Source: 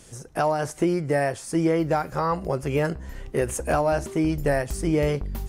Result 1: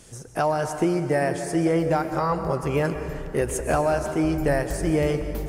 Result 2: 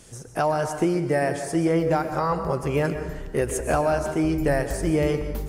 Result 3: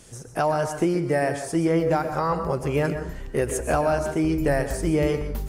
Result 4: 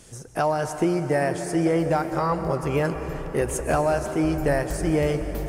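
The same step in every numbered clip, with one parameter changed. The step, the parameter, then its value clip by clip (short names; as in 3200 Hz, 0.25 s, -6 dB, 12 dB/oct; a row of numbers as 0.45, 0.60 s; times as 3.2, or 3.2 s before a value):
plate-style reverb, RT60: 2.5, 1.1, 0.52, 5.3 s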